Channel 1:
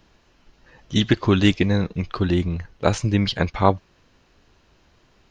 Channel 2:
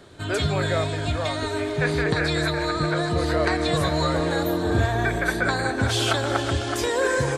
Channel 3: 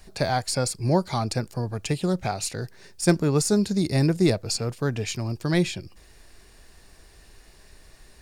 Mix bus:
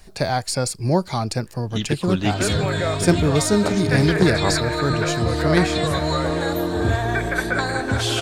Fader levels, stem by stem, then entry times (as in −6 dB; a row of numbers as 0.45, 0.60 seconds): −6.5, +1.0, +2.5 decibels; 0.80, 2.10, 0.00 seconds